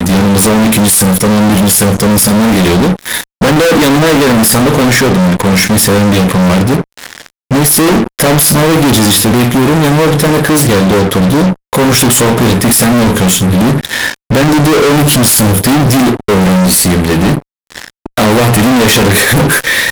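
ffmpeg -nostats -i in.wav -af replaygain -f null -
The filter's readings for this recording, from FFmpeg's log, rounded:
track_gain = -8.0 dB
track_peak = 0.522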